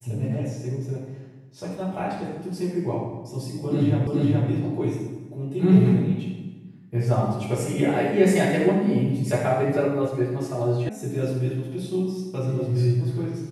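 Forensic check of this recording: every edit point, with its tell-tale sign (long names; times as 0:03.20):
0:04.07: the same again, the last 0.42 s
0:10.89: cut off before it has died away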